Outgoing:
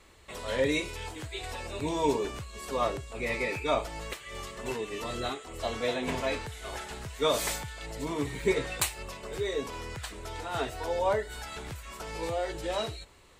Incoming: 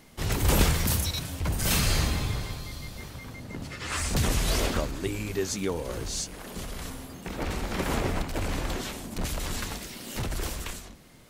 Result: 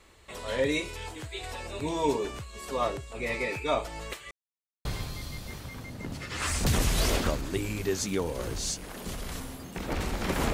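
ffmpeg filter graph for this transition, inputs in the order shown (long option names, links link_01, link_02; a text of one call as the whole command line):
ffmpeg -i cue0.wav -i cue1.wav -filter_complex "[0:a]apad=whole_dur=10.53,atrim=end=10.53,asplit=2[link_01][link_02];[link_01]atrim=end=4.31,asetpts=PTS-STARTPTS,afade=type=out:start_time=4.306:duration=0.004:curve=hsin[link_03];[link_02]atrim=start=4.31:end=4.85,asetpts=PTS-STARTPTS,volume=0[link_04];[1:a]atrim=start=2.35:end=8.03,asetpts=PTS-STARTPTS,afade=type=in:duration=0.004:curve=hsin[link_05];[link_03][link_04][link_05]concat=n=3:v=0:a=1" out.wav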